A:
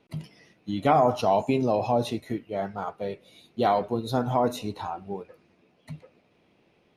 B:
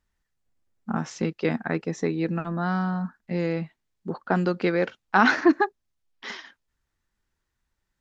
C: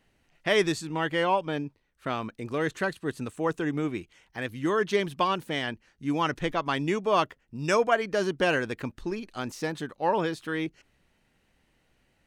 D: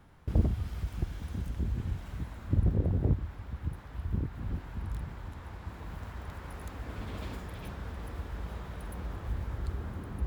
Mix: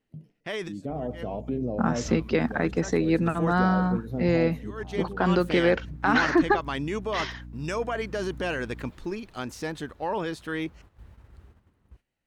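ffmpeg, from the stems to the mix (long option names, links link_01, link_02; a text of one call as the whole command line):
ffmpeg -i stem1.wav -i stem2.wav -i stem3.wav -i stem4.wav -filter_complex "[0:a]equalizer=frequency=125:width_type=o:width=1:gain=7,equalizer=frequency=250:width_type=o:width=1:gain=7,equalizer=frequency=500:width_type=o:width=1:gain=7,equalizer=frequency=1000:width_type=o:width=1:gain=-11,equalizer=frequency=2000:width_type=o:width=1:gain=-7,equalizer=frequency=4000:width_type=o:width=1:gain=-10,equalizer=frequency=8000:width_type=o:width=1:gain=-11,volume=-16dB,asplit=2[link_01][link_02];[1:a]highpass=140,alimiter=limit=-16dB:level=0:latency=1:release=95,aeval=exprs='val(0)+0.00631*(sin(2*PI*60*n/s)+sin(2*PI*2*60*n/s)/2+sin(2*PI*3*60*n/s)/3+sin(2*PI*4*60*n/s)/4+sin(2*PI*5*60*n/s)/5)':channel_layout=same,adelay=900,volume=0dB[link_03];[2:a]volume=-4.5dB[link_04];[3:a]adelay=1700,volume=-18.5dB,asplit=3[link_05][link_06][link_07];[link_05]atrim=end=4.31,asetpts=PTS-STARTPTS,afade=type=out:start_time=4.306:duration=0.004:curve=hsin[link_08];[link_06]atrim=start=4.31:end=4.98,asetpts=PTS-STARTPTS,volume=0[link_09];[link_07]atrim=start=4.98,asetpts=PTS-STARTPTS,afade=type=in:duration=0.004:curve=hsin[link_10];[link_08][link_09][link_10]concat=n=3:v=0:a=1[link_11];[link_02]apad=whole_len=541056[link_12];[link_04][link_12]sidechaincompress=threshold=-58dB:ratio=4:attack=6:release=122[link_13];[link_01][link_13][link_11]amix=inputs=3:normalize=0,agate=range=-10dB:threshold=-54dB:ratio=16:detection=peak,alimiter=level_in=0.5dB:limit=-24dB:level=0:latency=1:release=24,volume=-0.5dB,volume=0dB[link_14];[link_03][link_14]amix=inputs=2:normalize=0,dynaudnorm=framelen=220:gausssize=9:maxgain=4dB" out.wav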